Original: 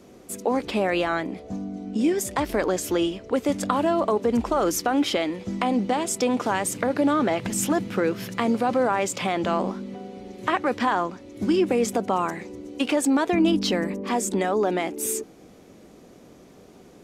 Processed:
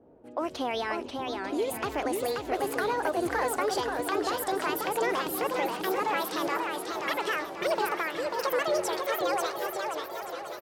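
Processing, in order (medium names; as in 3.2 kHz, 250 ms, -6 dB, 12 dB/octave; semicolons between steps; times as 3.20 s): gliding tape speed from 123% -> 198%; wow and flutter 17 cents; level-controlled noise filter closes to 730 Hz, open at -22.5 dBFS; on a send: feedback delay 895 ms, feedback 57%, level -12 dB; on the sum: modulated delay 536 ms, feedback 42%, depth 200 cents, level -4 dB; trim -7.5 dB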